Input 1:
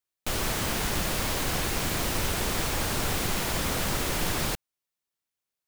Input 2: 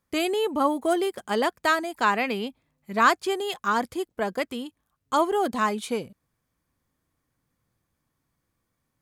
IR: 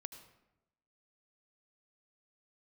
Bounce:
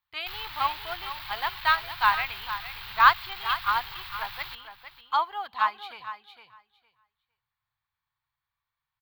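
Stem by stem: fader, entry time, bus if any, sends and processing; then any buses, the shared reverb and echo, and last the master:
+0.5 dB, 0.00 s, no send, echo send -20.5 dB, hard clipper -29.5 dBFS, distortion -8 dB; auto duck -6 dB, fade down 0.50 s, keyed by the second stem
-7.5 dB, 0.00 s, send -18.5 dB, echo send -7.5 dB, peaking EQ 610 Hz +8 dB 1.4 oct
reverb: on, RT60 0.95 s, pre-delay 71 ms
echo: feedback delay 458 ms, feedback 16%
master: FFT filter 120 Hz 0 dB, 230 Hz -22 dB, 570 Hz -18 dB, 880 Hz +6 dB, 4.2 kHz +12 dB, 6 kHz -11 dB, 9.4 kHz -19 dB, 15 kHz +8 dB; upward expansion 1.5:1, over -29 dBFS

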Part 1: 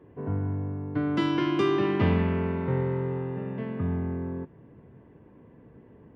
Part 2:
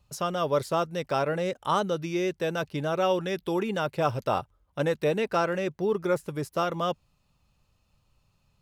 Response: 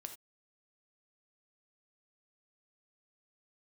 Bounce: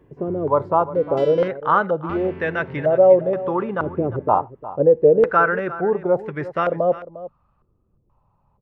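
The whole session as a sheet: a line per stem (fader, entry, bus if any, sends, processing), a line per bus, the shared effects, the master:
-1.0 dB, 0.00 s, muted 1.48–2.09 s, no send, no echo send, treble shelf 2.4 kHz +8.5 dB; auto duck -9 dB, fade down 0.30 s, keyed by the second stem
+1.5 dB, 0.00 s, send -9.5 dB, echo send -14 dB, step-sequenced low-pass 2.1 Hz 380–1900 Hz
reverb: on, pre-delay 3 ms
echo: delay 353 ms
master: none

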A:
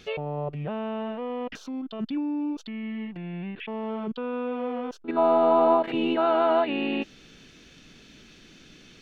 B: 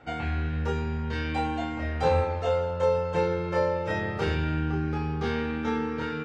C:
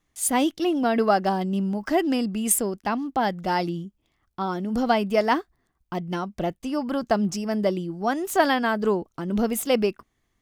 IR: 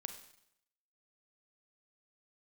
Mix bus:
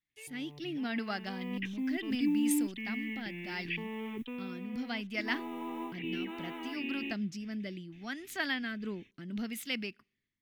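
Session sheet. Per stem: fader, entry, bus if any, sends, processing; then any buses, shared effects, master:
0.96 s -23 dB -> 1.67 s -11 dB -> 4.17 s -11 dB -> 4.61 s -20.5 dB, 0.10 s, no send, gate with hold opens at -41 dBFS; modulation noise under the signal 30 dB; static phaser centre 940 Hz, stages 8
mute
-19.0 dB, 0.00 s, send -23.5 dB, bass shelf 430 Hz -9.5 dB; rotary cabinet horn 0.7 Hz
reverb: on, RT60 0.75 s, pre-delay 32 ms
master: graphic EQ 125/250/500/1000/2000/4000/8000 Hz +9/+9/-7/-7/+11/+7/-4 dB; level rider gain up to 6.5 dB

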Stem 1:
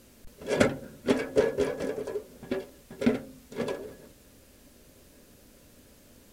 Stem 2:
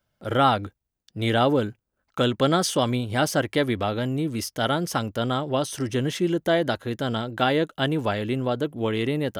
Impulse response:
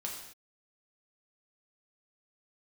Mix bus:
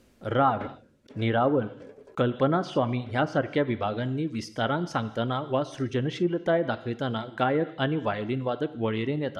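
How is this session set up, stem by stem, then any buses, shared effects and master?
-2.0 dB, 0.00 s, no send, slow attack 152 ms; auto duck -13 dB, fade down 0.85 s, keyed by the second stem
-3.5 dB, 0.00 s, send -9 dB, reverb removal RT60 0.79 s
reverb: on, pre-delay 3 ms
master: low-pass that closes with the level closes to 1.6 kHz, closed at -19 dBFS; treble shelf 6.1 kHz -11 dB

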